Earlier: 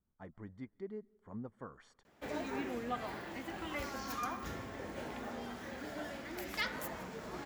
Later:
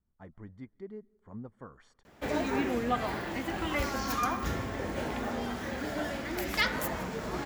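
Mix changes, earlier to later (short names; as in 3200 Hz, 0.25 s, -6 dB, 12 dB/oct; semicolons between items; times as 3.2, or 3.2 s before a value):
background +8.5 dB; master: add low shelf 100 Hz +7 dB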